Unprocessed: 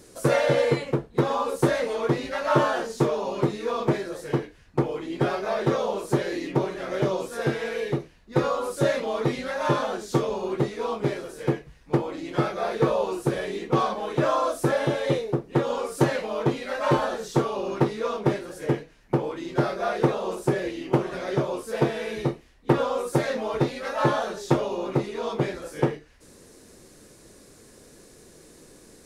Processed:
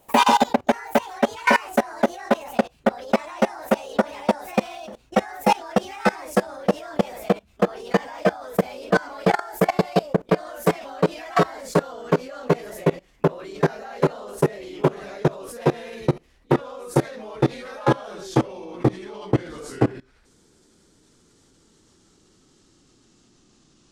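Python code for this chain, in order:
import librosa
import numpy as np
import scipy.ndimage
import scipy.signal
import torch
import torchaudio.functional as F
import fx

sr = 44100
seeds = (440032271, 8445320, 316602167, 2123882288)

y = fx.speed_glide(x, sr, from_pct=173, to_pct=70)
y = fx.level_steps(y, sr, step_db=22)
y = y * 10.0 ** (7.5 / 20.0)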